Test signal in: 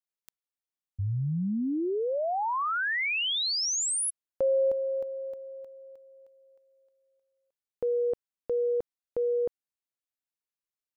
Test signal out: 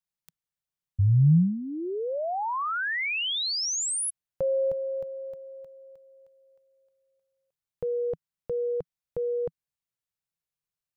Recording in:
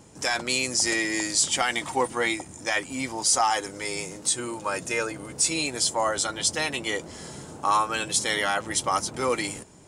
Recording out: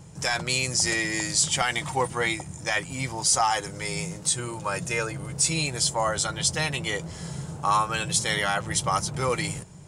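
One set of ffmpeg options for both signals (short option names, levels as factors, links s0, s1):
-af "lowshelf=f=200:t=q:w=3:g=6.5"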